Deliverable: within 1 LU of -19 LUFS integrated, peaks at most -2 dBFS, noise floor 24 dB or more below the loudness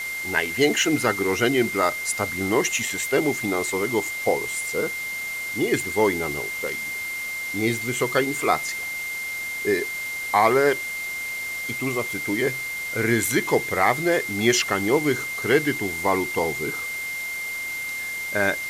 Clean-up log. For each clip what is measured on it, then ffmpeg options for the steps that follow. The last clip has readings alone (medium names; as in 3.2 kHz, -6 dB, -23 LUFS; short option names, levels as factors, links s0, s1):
steady tone 2.1 kHz; tone level -28 dBFS; noise floor -31 dBFS; noise floor target -48 dBFS; loudness -23.5 LUFS; peak level -4.5 dBFS; loudness target -19.0 LUFS
-> -af "bandreject=f=2100:w=30"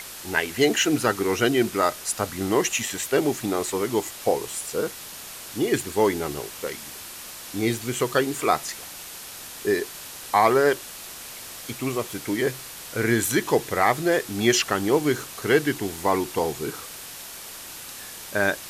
steady tone not found; noise floor -39 dBFS; noise floor target -48 dBFS
-> -af "afftdn=nr=9:nf=-39"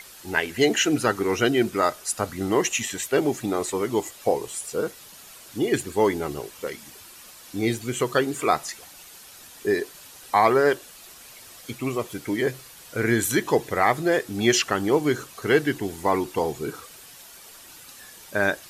noise floor -46 dBFS; noise floor target -49 dBFS
-> -af "afftdn=nr=6:nf=-46"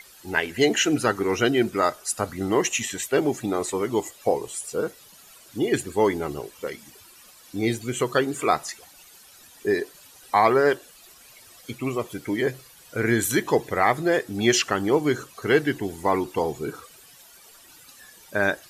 noise floor -51 dBFS; loudness -24.5 LUFS; peak level -5.5 dBFS; loudness target -19.0 LUFS
-> -af "volume=1.88,alimiter=limit=0.794:level=0:latency=1"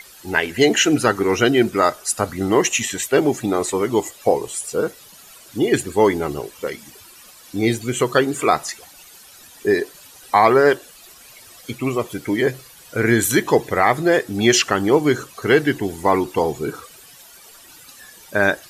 loudness -19.0 LUFS; peak level -2.0 dBFS; noise floor -45 dBFS